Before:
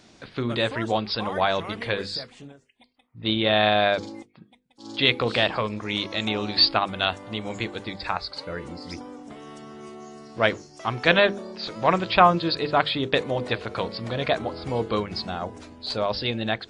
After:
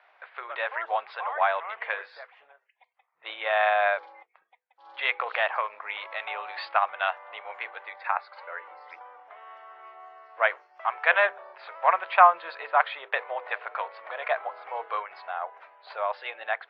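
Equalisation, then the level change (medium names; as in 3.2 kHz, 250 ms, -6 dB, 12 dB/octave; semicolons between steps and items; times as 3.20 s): inverse Chebyshev high-pass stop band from 270 Hz, stop band 50 dB; low-pass 2.2 kHz 24 dB/octave; +1.5 dB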